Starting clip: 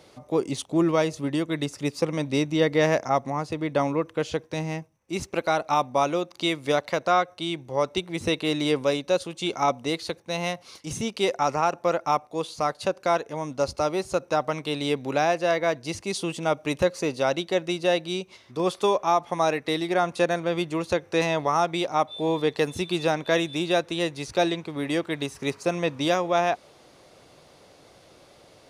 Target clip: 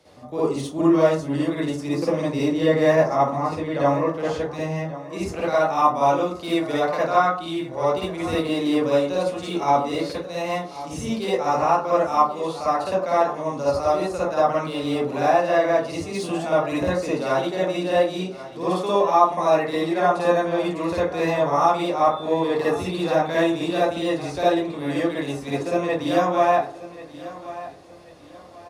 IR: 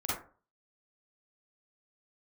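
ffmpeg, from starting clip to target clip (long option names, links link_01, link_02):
-filter_complex "[0:a]acrossover=split=270|830|1800[link_01][link_02][link_03][link_04];[link_04]asoftclip=type=tanh:threshold=-27dB[link_05];[link_01][link_02][link_03][link_05]amix=inputs=4:normalize=0,aecho=1:1:1087|2174|3261:0.158|0.0523|0.0173[link_06];[1:a]atrim=start_sample=2205,asetrate=37044,aresample=44100[link_07];[link_06][link_07]afir=irnorm=-1:irlink=0,volume=-4.5dB"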